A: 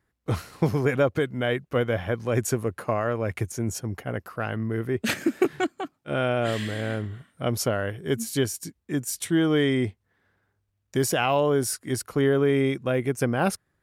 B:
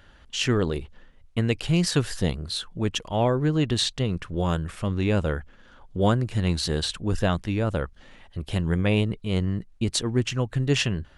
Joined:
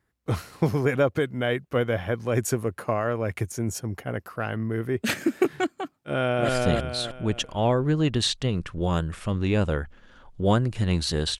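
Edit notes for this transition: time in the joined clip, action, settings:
A
5.95–6.49 s: echo throw 310 ms, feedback 35%, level -1 dB
6.49 s: go over to B from 2.05 s

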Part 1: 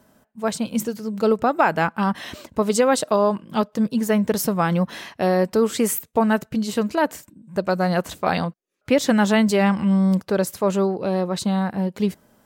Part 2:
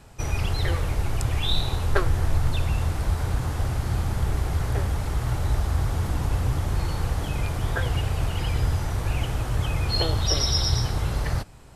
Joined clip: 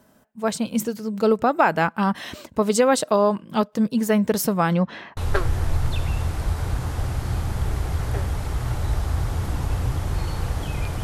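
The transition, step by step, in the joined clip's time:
part 1
4.72–5.17 s: low-pass 8 kHz -> 1.2 kHz
5.17 s: go over to part 2 from 1.78 s

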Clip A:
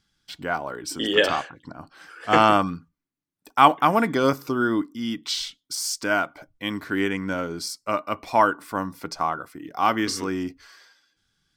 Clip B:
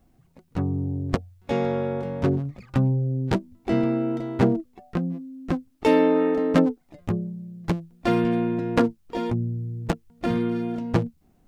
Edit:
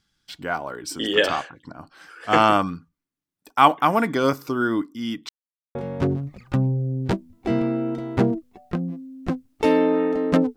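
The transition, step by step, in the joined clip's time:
clip A
5.29–5.75 s: mute
5.75 s: go over to clip B from 1.97 s

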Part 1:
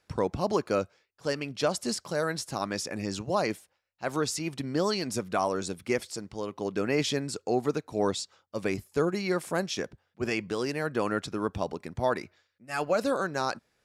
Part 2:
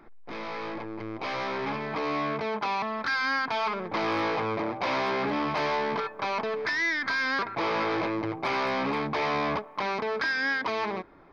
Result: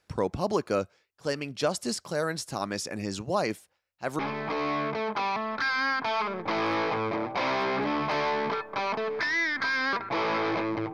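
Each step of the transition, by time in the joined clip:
part 1
4.19 s: go over to part 2 from 1.65 s

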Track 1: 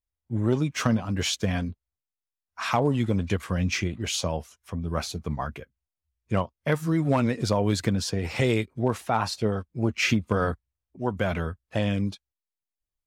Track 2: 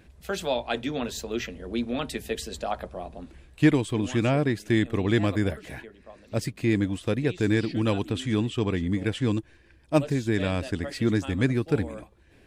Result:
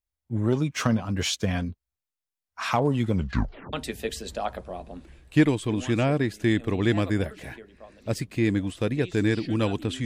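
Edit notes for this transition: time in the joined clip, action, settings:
track 1
3.14 s: tape stop 0.59 s
3.73 s: go over to track 2 from 1.99 s

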